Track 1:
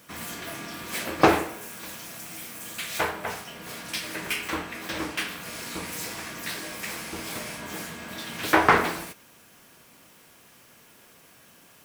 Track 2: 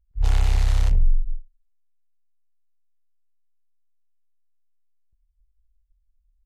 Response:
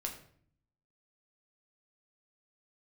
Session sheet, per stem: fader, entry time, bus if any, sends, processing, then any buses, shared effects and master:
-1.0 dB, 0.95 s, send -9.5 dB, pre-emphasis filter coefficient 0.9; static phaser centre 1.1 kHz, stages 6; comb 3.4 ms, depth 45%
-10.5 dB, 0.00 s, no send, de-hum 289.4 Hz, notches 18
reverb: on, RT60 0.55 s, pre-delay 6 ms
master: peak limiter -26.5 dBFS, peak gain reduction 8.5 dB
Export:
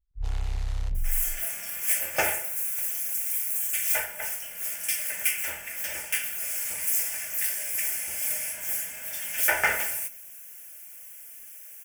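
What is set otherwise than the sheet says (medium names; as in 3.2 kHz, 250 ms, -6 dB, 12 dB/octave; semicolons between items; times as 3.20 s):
stem 1 -1.0 dB -> +8.0 dB; master: missing peak limiter -26.5 dBFS, peak gain reduction 8.5 dB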